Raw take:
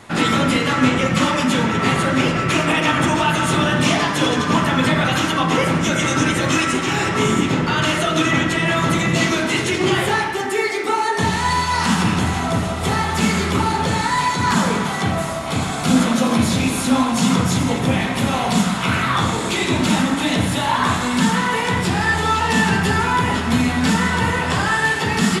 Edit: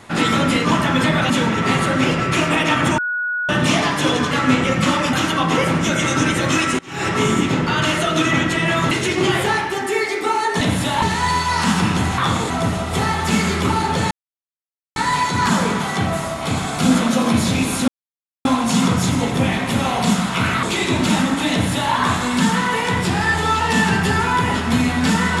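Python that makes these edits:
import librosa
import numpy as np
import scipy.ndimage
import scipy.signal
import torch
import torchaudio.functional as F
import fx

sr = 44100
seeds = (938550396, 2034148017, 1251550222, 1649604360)

y = fx.edit(x, sr, fx.swap(start_s=0.65, length_s=0.82, other_s=4.48, other_length_s=0.65),
    fx.bleep(start_s=3.15, length_s=0.51, hz=1460.0, db=-19.0),
    fx.fade_in_from(start_s=6.79, length_s=0.27, curve='qua', floor_db=-22.5),
    fx.cut(start_s=8.91, length_s=0.63),
    fx.insert_silence(at_s=14.01, length_s=0.85),
    fx.insert_silence(at_s=16.93, length_s=0.57),
    fx.move(start_s=19.11, length_s=0.32, to_s=12.4),
    fx.duplicate(start_s=20.32, length_s=0.41, to_s=11.24), tone=tone)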